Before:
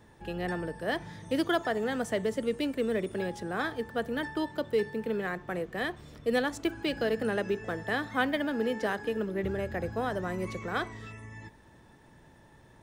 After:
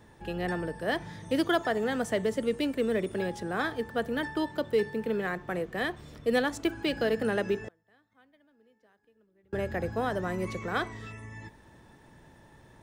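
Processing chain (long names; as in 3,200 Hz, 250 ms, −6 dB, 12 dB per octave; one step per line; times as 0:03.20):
0:07.68–0:09.53: gate with flip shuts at −33 dBFS, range −36 dB
level +1.5 dB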